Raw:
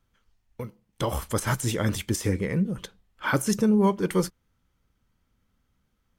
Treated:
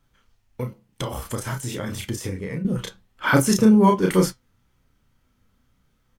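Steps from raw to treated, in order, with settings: doubler 32 ms -3 dB; 0.61–2.65 compressor, threshold -31 dBFS, peak gain reduction 12.5 dB; flange 1.2 Hz, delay 6.9 ms, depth 1.8 ms, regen +73%; gain +9 dB

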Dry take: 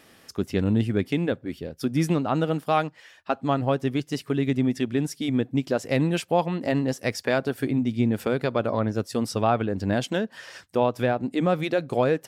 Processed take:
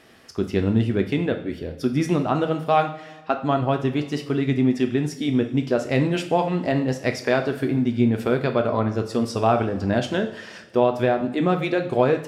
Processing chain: high shelf 7800 Hz -11 dB; two-slope reverb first 0.48 s, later 1.9 s, from -16 dB, DRR 5 dB; gain +2 dB

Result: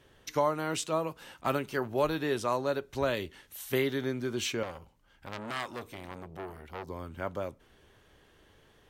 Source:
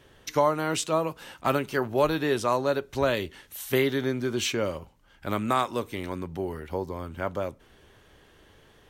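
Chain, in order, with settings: 4.63–6.88 core saturation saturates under 3100 Hz; gain -5 dB

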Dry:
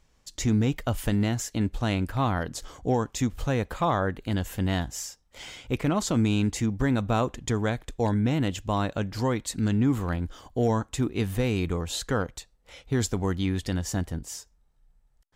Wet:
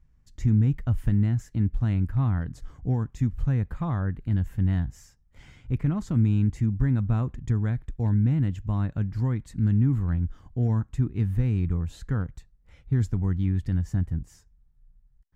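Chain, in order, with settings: EQ curve 140 Hz 0 dB, 540 Hz -20 dB, 1800 Hz -14 dB, 3300 Hz -24 dB; gain +5.5 dB

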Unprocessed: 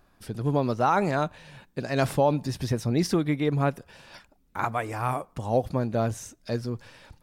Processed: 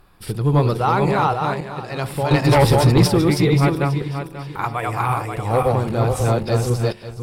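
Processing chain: regenerating reverse delay 0.268 s, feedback 51%, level -0.5 dB; de-hum 89.6 Hz, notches 11; random-step tremolo 1.3 Hz, depth 75%; sine folder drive 13 dB, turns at -3 dBFS; thirty-one-band EQ 250 Hz -11 dB, 630 Hz -8 dB, 1600 Hz -5 dB, 6300 Hz -11 dB; gain -3 dB

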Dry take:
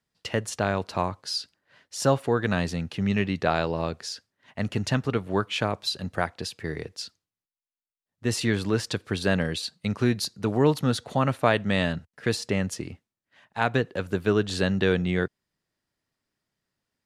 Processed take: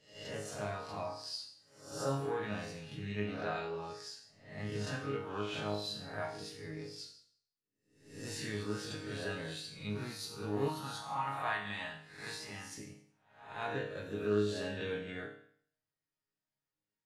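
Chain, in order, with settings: spectral swells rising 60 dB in 0.62 s; resonator bank G#2 sus4, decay 0.59 s; 10.68–12.78 resonant low shelf 660 Hz -7 dB, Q 3; gain +2 dB

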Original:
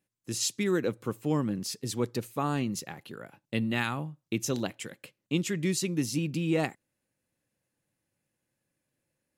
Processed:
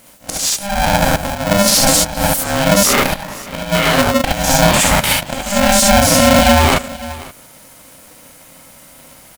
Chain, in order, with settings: stepped spectrum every 0.1 s; high shelf 7200 Hz +9 dB; compressor 8:1, threshold -41 dBFS, peak gain reduction 17 dB; auto swell 0.574 s; on a send: echo 0.53 s -23 dB; on the sum: non-linear reverb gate 90 ms rising, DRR -3 dB; maximiser +35.5 dB; polarity switched at an audio rate 400 Hz; gain -1 dB

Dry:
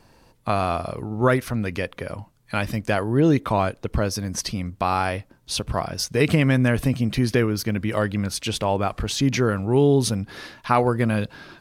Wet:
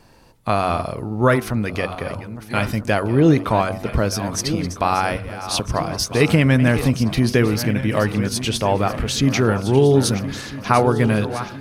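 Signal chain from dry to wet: regenerating reverse delay 0.651 s, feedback 64%, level -12 dB; de-hum 94.48 Hz, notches 16; gain +3.5 dB

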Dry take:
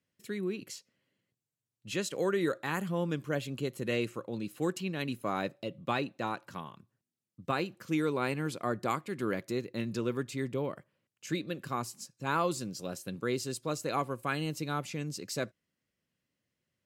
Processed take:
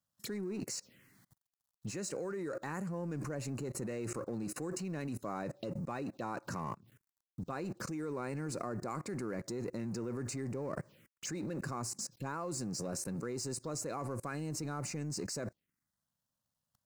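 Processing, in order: G.711 law mismatch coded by mu; level quantiser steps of 24 dB; envelope phaser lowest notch 380 Hz, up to 3300 Hz, full sweep at -46.5 dBFS; gain +10 dB

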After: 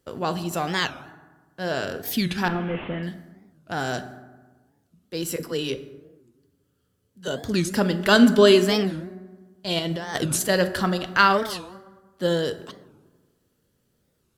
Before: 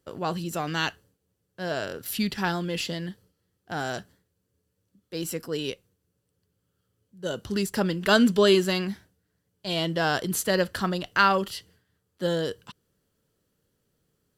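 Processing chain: 2.48–3.03 delta modulation 16 kbps, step -39 dBFS; 5.36–7.28 dispersion lows, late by 41 ms, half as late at 510 Hz; 9.79–10.49 negative-ratio compressor -29 dBFS, ratio -0.5; reverb RT60 1.3 s, pre-delay 4 ms, DRR 9.5 dB; record warp 45 rpm, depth 250 cents; gain +3 dB

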